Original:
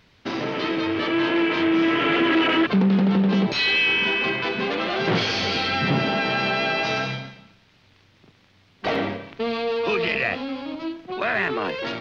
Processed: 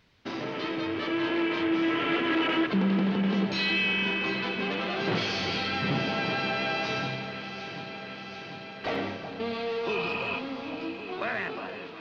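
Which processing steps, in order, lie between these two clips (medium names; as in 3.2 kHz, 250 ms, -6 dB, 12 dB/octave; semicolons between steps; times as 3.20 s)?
fade out at the end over 0.78 s; spectral replace 9.97–10.36 s, 590–3300 Hz before; echo whose repeats swap between lows and highs 371 ms, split 1.6 kHz, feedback 86%, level -10 dB; trim -7 dB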